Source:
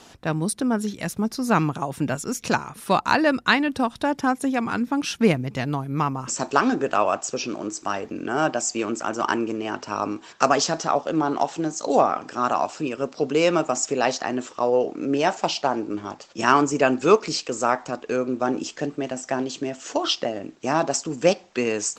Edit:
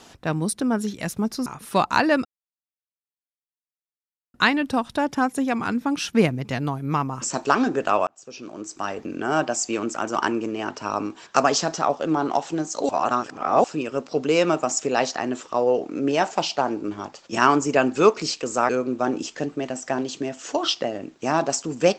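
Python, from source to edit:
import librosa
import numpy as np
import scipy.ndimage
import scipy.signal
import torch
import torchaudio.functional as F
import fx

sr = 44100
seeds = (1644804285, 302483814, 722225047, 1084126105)

y = fx.edit(x, sr, fx.cut(start_s=1.46, length_s=1.15),
    fx.insert_silence(at_s=3.4, length_s=2.09),
    fx.fade_in_span(start_s=7.13, length_s=0.98),
    fx.reverse_span(start_s=11.95, length_s=0.75),
    fx.cut(start_s=17.75, length_s=0.35), tone=tone)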